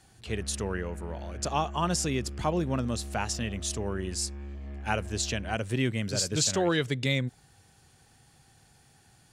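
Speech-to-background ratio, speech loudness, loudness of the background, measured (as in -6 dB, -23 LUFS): 11.0 dB, -30.5 LUFS, -41.5 LUFS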